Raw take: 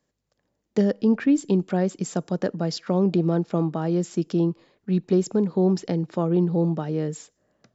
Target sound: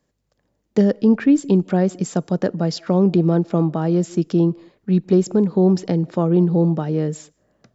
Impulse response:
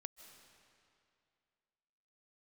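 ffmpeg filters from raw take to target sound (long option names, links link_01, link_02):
-filter_complex "[0:a]asplit=2[link_01][link_02];[link_02]lowpass=frequency=1400:poles=1[link_03];[1:a]atrim=start_sample=2205,afade=type=out:start_time=0.24:duration=0.01,atrim=end_sample=11025,lowshelf=frequency=160:gain=10.5[link_04];[link_03][link_04]afir=irnorm=-1:irlink=0,volume=-3dB[link_05];[link_01][link_05]amix=inputs=2:normalize=0,volume=2dB"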